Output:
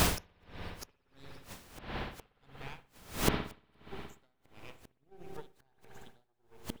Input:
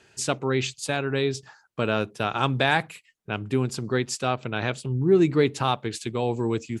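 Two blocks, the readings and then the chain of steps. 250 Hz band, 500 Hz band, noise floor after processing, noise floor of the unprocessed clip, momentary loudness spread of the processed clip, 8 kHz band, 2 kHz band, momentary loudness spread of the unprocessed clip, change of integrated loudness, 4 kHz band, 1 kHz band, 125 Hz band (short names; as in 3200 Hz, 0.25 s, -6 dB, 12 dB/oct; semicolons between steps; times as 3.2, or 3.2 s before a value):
-17.0 dB, -20.0 dB, -75 dBFS, -64 dBFS, 24 LU, -8.0 dB, -14.5 dB, 9 LU, -14.5 dB, -10.5 dB, -15.5 dB, -15.5 dB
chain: moving spectral ripple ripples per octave 0.79, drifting +1.6 Hz, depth 24 dB; de-hum 122.6 Hz, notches 8; half-wave rectifier; transient shaper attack +8 dB, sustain -7 dB; added noise pink -34 dBFS; flipped gate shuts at -20 dBFS, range -39 dB; spring tank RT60 3 s, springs 59 ms, chirp 45 ms, DRR 6 dB; dB-linear tremolo 1.5 Hz, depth 32 dB; gain +9.5 dB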